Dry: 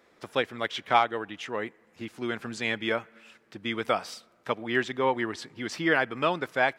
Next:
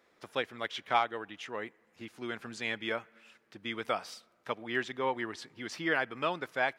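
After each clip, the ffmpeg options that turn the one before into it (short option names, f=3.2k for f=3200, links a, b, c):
-af "lowshelf=f=490:g=-3.5,bandreject=f=7.7k:w=26,volume=-5dB"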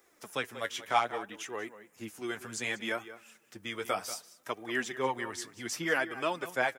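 -filter_complex "[0:a]acrossover=split=240[a][b];[b]aexciter=amount=4.1:drive=6.4:freq=5.8k[c];[a][c]amix=inputs=2:normalize=0,asplit=2[d][e];[e]adelay=186.6,volume=-14dB,highshelf=f=4k:g=-4.2[f];[d][f]amix=inputs=2:normalize=0,flanger=delay=2.5:depth=8.6:regen=34:speed=0.65:shape=sinusoidal,volume=4dB"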